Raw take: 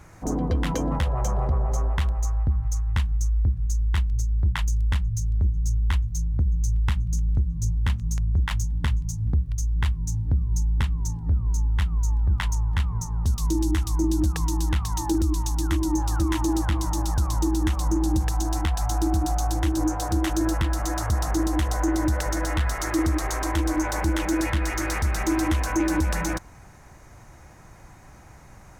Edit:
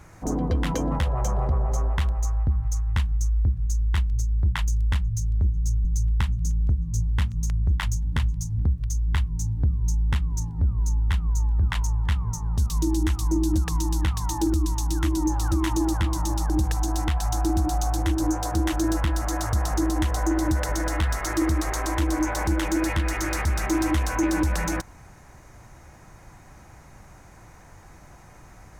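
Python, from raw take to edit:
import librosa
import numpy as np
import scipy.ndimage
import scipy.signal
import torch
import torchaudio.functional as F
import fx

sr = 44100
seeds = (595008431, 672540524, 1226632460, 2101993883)

y = fx.edit(x, sr, fx.cut(start_s=5.85, length_s=0.68),
    fx.cut(start_s=17.18, length_s=0.89), tone=tone)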